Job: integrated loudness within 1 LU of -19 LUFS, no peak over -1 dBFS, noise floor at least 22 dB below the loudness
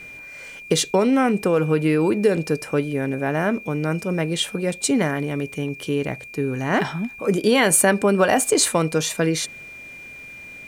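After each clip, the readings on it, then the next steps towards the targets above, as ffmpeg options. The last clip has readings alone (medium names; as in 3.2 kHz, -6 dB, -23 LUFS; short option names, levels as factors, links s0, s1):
steady tone 2.4 kHz; tone level -37 dBFS; loudness -21.0 LUFS; peak level -4.5 dBFS; loudness target -19.0 LUFS
-> -af "bandreject=f=2400:w=30"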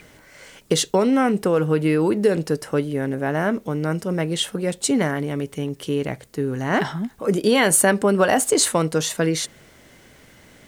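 steady tone not found; loudness -21.0 LUFS; peak level -4.5 dBFS; loudness target -19.0 LUFS
-> -af "volume=1.26"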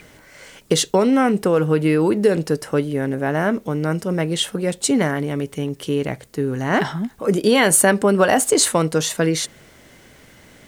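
loudness -19.0 LUFS; peak level -2.5 dBFS; noise floor -49 dBFS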